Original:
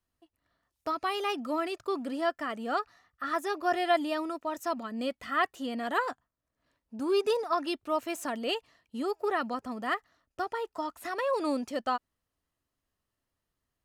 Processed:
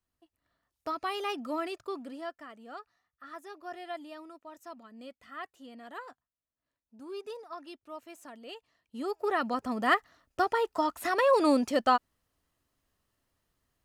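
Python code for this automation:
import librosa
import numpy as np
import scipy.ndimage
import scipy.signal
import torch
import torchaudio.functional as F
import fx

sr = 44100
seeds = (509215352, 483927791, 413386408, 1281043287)

y = fx.gain(x, sr, db=fx.line((1.7, -2.5), (2.55, -14.0), (8.5, -14.0), (9.05, -2.5), (9.88, 6.0)))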